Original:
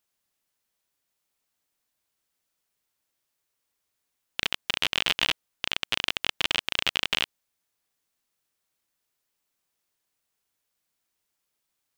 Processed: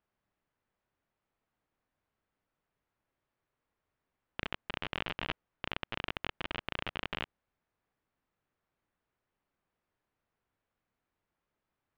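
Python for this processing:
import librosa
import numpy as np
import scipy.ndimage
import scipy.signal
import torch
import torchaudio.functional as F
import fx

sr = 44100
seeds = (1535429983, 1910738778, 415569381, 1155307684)

y = fx.level_steps(x, sr, step_db=23)
y = scipy.signal.sosfilt(scipy.signal.butter(2, 1700.0, 'lowpass', fs=sr, output='sos'), y)
y = fx.low_shelf(y, sr, hz=220.0, db=6.0)
y = F.gain(torch.from_numpy(y), 14.0).numpy()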